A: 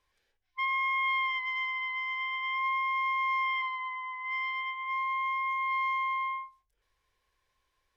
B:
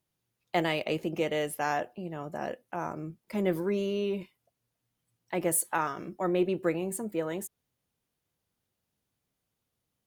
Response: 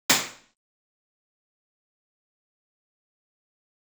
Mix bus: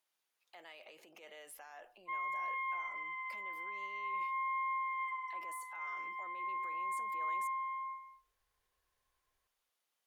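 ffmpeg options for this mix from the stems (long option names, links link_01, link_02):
-filter_complex "[0:a]lowpass=frequency=2000:width=0.5412,lowpass=frequency=2000:width=1.3066,adelay=1500,volume=-7dB,asplit=2[link_01][link_02];[link_02]volume=-13dB[link_03];[1:a]acompressor=threshold=-35dB:ratio=6,alimiter=level_in=17.5dB:limit=-24dB:level=0:latency=1:release=20,volume=-17.5dB,highpass=810,volume=1.5dB[link_04];[link_03]aecho=0:1:226:1[link_05];[link_01][link_04][link_05]amix=inputs=3:normalize=0,highshelf=frequency=7700:gain=-4.5"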